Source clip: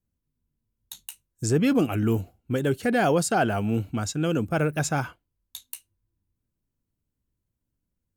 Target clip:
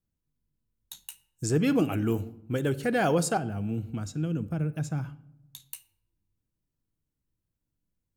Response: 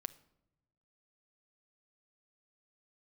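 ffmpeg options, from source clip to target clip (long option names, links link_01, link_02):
-filter_complex "[0:a]asettb=1/sr,asplit=3[link_01][link_02][link_03];[link_01]atrim=end=3.374[link_04];[link_02]atrim=start=3.37:end=5.6,asetpts=PTS-STARTPTS,afade=type=in:duration=0.004:curve=qsin,afade=type=out:start_time=2.226:duration=0.004:curve=qsin,acrossover=split=270[link_05][link_06];[link_06]acompressor=threshold=-38dB:ratio=6[link_07];[link_05][link_07]amix=inputs=2:normalize=0[link_08];[link_03]atrim=start=5.596[link_09];[link_04][link_08]acrossfade=duration=0.004:curve1=hsin:curve2=qsin[link_10];[link_10][link_09]acrossfade=duration=0.004:curve1=qsin:curve2=hsin[link_11];[1:a]atrim=start_sample=2205[link_12];[link_11][link_12]afir=irnorm=-1:irlink=0"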